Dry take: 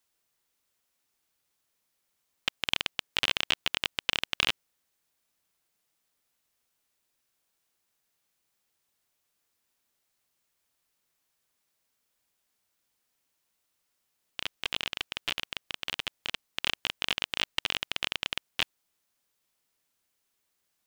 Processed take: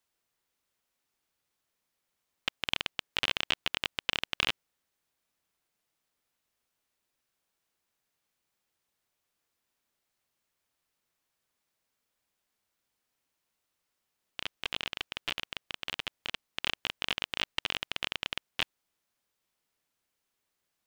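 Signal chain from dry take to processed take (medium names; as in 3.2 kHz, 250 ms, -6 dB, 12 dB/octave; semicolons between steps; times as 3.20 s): treble shelf 4.4 kHz -5.5 dB; trim -1 dB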